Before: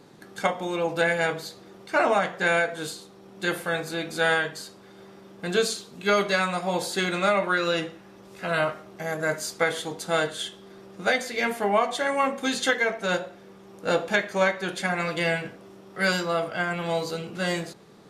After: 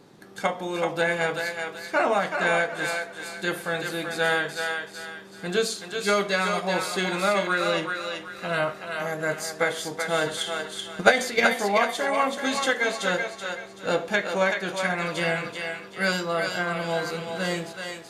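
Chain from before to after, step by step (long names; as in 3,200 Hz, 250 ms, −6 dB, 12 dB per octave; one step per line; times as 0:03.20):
0:10.21–0:11.53: transient designer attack +10 dB, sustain +6 dB
feedback echo with a high-pass in the loop 380 ms, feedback 37%, high-pass 600 Hz, level −4 dB
level −1 dB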